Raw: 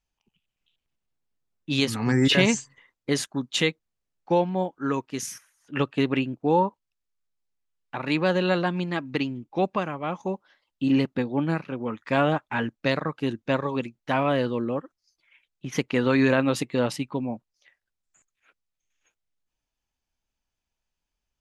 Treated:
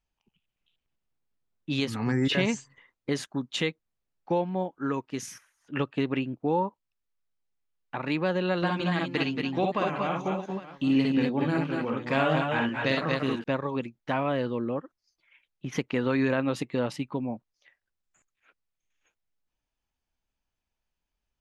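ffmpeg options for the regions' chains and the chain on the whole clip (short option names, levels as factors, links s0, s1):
-filter_complex "[0:a]asettb=1/sr,asplit=3[s0][s1][s2];[s0]atrim=end=8.574[s3];[s1]atrim=start=8.57:end=13.44,asetpts=PTS-STARTPTS,afade=t=in:d=0.004:c=qsin,afade=t=out:st=4.866:d=0.004:c=qsin,highshelf=f=2400:g=8.5,aecho=1:1:52|64|227|242|609|806:0.596|0.596|0.398|0.531|0.106|0.119,atrim=end_sample=214767[s4];[s2]atrim=start=13.436[s5];[s3][s4]acrossfade=d=0.004:c1=hsin:c2=qsin[s6];[s6][s5]acrossfade=d=0.004:c1=qsin:c2=hsin,acompressor=threshold=0.0316:ratio=1.5,highshelf=f=5500:g=-9.5"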